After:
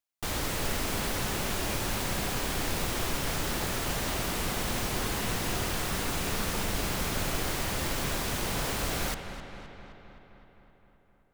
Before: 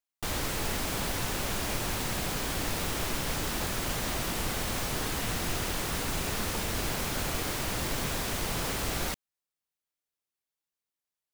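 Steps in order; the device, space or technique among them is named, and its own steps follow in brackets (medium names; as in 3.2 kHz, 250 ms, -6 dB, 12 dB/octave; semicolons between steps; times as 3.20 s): dub delay into a spring reverb (filtered feedback delay 260 ms, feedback 68%, low-pass 4.3 kHz, level -11 dB; spring tank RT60 2.8 s, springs 53 ms, chirp 75 ms, DRR 9.5 dB)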